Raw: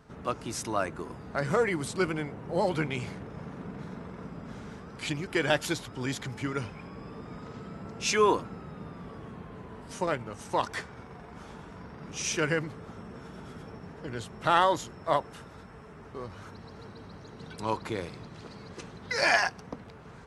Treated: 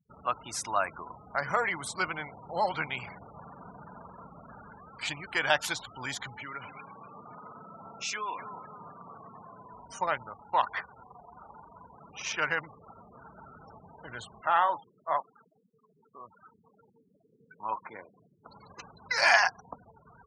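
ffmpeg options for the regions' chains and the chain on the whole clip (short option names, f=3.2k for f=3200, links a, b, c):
-filter_complex "[0:a]asettb=1/sr,asplit=3[a][b][c];[a]atrim=end=6.384[d];[b]atrim=start=6.38:end=9.74,asetpts=PTS-STARTPTS,afade=t=in:d=0.004:c=qsin,afade=t=out:st=3.356:d=0.004:c=qsin,highpass=130,acompressor=threshold=-33dB:ratio=4:attack=3.2:release=140:knee=1:detection=peak,asplit=2[e][f];[f]adelay=252,lowpass=f=2.1k:p=1,volume=-9dB,asplit=2[g][h];[h]adelay=252,lowpass=f=2.1k:p=1,volume=0.48,asplit=2[i][j];[j]adelay=252,lowpass=f=2.1k:p=1,volume=0.48,asplit=2[k][l];[l]adelay=252,lowpass=f=2.1k:p=1,volume=0.48,asplit=2[m][n];[n]adelay=252,lowpass=f=2.1k:p=1,volume=0.48[o];[e][g][i][k][m][o]amix=inputs=6:normalize=0,atrim=end_sample=148176[p];[c]atrim=start=9.736[q];[d][p]acrossfade=d=0.004:c1=hsin:c2=qsin[r];[r][q]acrossfade=d=0.004:c1=qsin:c2=hsin,asettb=1/sr,asplit=3[s][t][u];[s]atrim=end=10.294[v];[t]atrim=start=10.29:end=13.17,asetpts=PTS-STARTPTS,afade=t=in:d=0.004:c=qsin,afade=t=out:st=2.876:d=0.004:c=qsin,bass=f=250:g=-3,treble=f=4k:g=-4,adynamicsmooth=sensitivity=8:basefreq=2.1k[w];[u]atrim=start=13.166[x];[v][w]acrossfade=d=0.004:c1=hsin:c2=qsin[y];[y][x]acrossfade=d=0.004:c1=qsin:c2=hsin,asettb=1/sr,asplit=3[z][aa][ab];[z]atrim=end=14.414[ac];[aa]atrim=start=14.41:end=18.46,asetpts=PTS-STARTPTS,afade=t=in:d=0.004:c=qsin,afade=t=out:st=4.046:d=0.004:c=qsin,flanger=delay=2.9:depth=7.8:regen=-75:speed=1.1:shape=sinusoidal,highpass=160,lowpass=2.4k[ad];[ab]atrim=start=18.456[ae];[ac][ad]acrossfade=d=0.004:c1=hsin:c2=qsin[af];[af][ae]acrossfade=d=0.004:c1=qsin:c2=hsin,afftfilt=real='re*gte(hypot(re,im),0.00891)':imag='im*gte(hypot(re,im),0.00891)':win_size=1024:overlap=0.75,lowshelf=f=570:t=q:w=1.5:g=-11.5,volume=1.5dB"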